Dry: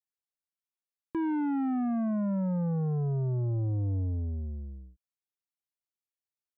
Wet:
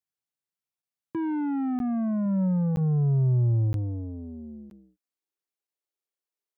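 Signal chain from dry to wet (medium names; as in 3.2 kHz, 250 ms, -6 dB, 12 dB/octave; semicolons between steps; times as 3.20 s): 2.24–2.81 s: doubling 16 ms -13.5 dB; high-pass sweep 120 Hz -> 380 Hz, 3.64–5.53 s; crackling interface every 0.97 s, samples 512, zero, from 0.82 s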